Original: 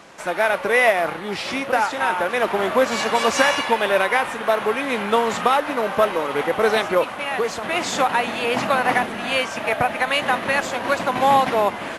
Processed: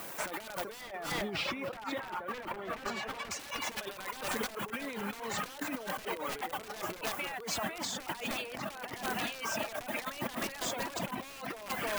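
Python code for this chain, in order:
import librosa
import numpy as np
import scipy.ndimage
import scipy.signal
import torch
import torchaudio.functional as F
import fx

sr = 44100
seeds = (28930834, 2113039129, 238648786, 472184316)

y = fx.dereverb_blind(x, sr, rt60_s=1.8)
y = fx.dmg_noise_colour(y, sr, seeds[0], colour='violet', level_db=-45.0)
y = (np.mod(10.0 ** (12.5 / 20.0) * y + 1.0, 2.0) - 1.0) / 10.0 ** (12.5 / 20.0)
y = fx.bass_treble(y, sr, bass_db=2, treble_db=-11, at=(0.81, 3.31))
y = y + 10.0 ** (-13.5 / 20.0) * np.pad(y, (int(307 * sr / 1000.0), 0))[:len(y)]
y = fx.over_compress(y, sr, threshold_db=-32.0, ratio=-1.0)
y = y * librosa.db_to_amplitude(-8.0)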